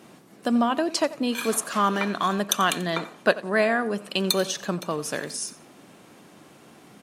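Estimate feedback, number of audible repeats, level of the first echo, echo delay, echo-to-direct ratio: 24%, 2, -18.0 dB, 89 ms, -18.0 dB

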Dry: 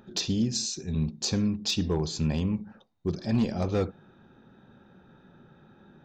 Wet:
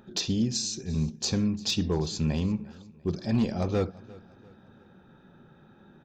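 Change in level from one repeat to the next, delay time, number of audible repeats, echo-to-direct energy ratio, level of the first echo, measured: -7.5 dB, 0.347 s, 2, -21.0 dB, -22.0 dB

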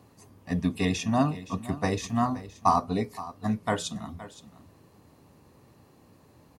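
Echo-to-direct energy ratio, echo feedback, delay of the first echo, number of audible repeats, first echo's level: -16.0 dB, no steady repeat, 0.519 s, 1, -16.0 dB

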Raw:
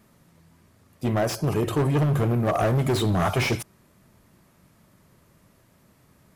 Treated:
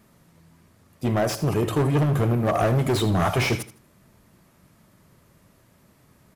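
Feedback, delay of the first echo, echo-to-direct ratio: 24%, 79 ms, -13.5 dB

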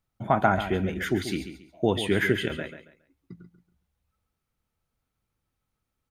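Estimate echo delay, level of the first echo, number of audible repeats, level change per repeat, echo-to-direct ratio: 0.138 s, -10.5 dB, 3, -11.5 dB, -10.0 dB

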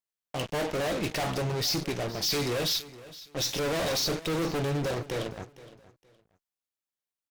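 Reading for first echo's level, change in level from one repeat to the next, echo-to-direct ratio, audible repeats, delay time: -18.0 dB, -12.5 dB, -17.5 dB, 2, 0.466 s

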